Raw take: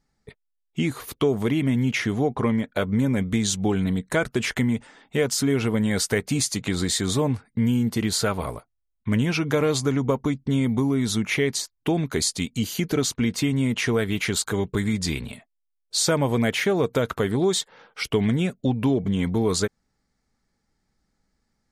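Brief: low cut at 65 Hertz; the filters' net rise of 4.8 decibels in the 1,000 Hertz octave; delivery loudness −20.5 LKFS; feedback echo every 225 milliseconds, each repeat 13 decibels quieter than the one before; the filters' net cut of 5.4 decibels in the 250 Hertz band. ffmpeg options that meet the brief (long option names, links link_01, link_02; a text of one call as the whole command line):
ffmpeg -i in.wav -af "highpass=65,equalizer=frequency=250:width_type=o:gain=-7,equalizer=frequency=1000:width_type=o:gain=6.5,aecho=1:1:225|450|675:0.224|0.0493|0.0108,volume=5dB" out.wav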